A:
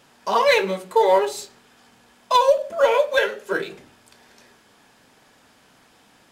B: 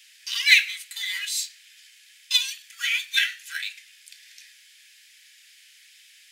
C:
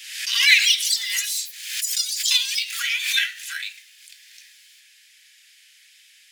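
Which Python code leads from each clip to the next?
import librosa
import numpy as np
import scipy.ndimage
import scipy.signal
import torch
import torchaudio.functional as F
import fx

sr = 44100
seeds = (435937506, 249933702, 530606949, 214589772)

y1 = scipy.signal.sosfilt(scipy.signal.butter(8, 1900.0, 'highpass', fs=sr, output='sos'), x)
y1 = y1 * librosa.db_to_amplitude(7.0)
y2 = fx.echo_pitch(y1, sr, ms=334, semitones=6, count=3, db_per_echo=-3.0)
y2 = fx.pre_swell(y2, sr, db_per_s=59.0)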